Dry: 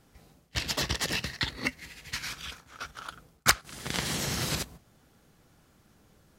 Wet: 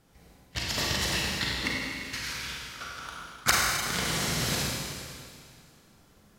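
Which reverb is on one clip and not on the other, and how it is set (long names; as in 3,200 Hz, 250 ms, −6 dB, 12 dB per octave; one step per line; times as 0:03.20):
four-comb reverb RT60 2.2 s, combs from 33 ms, DRR −3.5 dB
level −2.5 dB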